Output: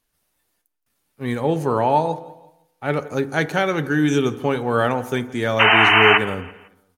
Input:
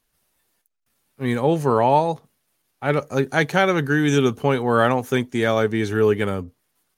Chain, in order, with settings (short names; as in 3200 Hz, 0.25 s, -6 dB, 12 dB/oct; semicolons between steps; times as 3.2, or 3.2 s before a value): painted sound noise, 5.59–6.18, 640–3100 Hz -12 dBFS; on a send: feedback echo 0.168 s, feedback 42%, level -21 dB; on the sum: FDN reverb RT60 0.87 s, low-frequency decay 0.85×, high-frequency decay 0.35×, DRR 12 dB; gain -2 dB